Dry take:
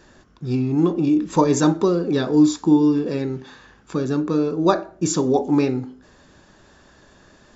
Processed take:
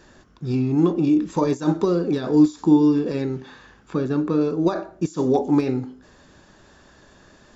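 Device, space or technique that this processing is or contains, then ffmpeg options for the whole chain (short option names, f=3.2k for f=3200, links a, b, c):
de-esser from a sidechain: -filter_complex "[0:a]asplit=2[a][b];[b]highpass=4.4k,apad=whole_len=333201[c];[a][c]sidechaincompress=threshold=-42dB:ratio=12:attack=2.6:release=44,asettb=1/sr,asplit=3[d][e][f];[d]atrim=end=3.354[g];[e]atrim=start=3.35:end=4.41,asetpts=PTS-STARTPTS,afade=t=in:d=0.004:c=qsin,afade=t=out:st=1.056:d=0.004:c=qsin,acrossover=split=3800[h][i];[i]acompressor=threshold=-57dB:ratio=4:attack=1:release=60[j];[h][j]amix=inputs=2:normalize=0[k];[f]atrim=start=4.406[l];[g][k]acrossfade=d=0.004:c1=hsin:c2=qsin[m];[m][l]acrossfade=d=0.004:c1=qsin:c2=hsin"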